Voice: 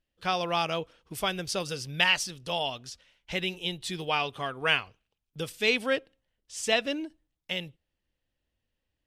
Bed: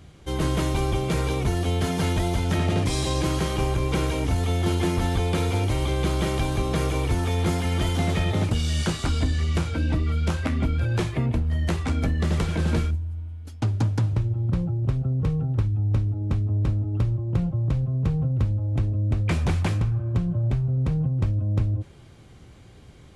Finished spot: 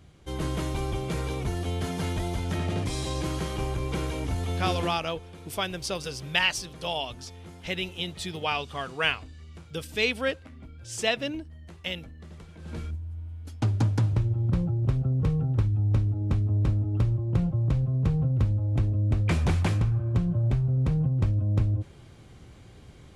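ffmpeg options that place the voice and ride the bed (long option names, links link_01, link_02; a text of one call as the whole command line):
ffmpeg -i stem1.wav -i stem2.wav -filter_complex "[0:a]adelay=4350,volume=-0.5dB[link_01];[1:a]volume=15dB,afade=type=out:start_time=4.78:duration=0.21:silence=0.158489,afade=type=in:start_time=12.6:duration=0.92:silence=0.0891251[link_02];[link_01][link_02]amix=inputs=2:normalize=0" out.wav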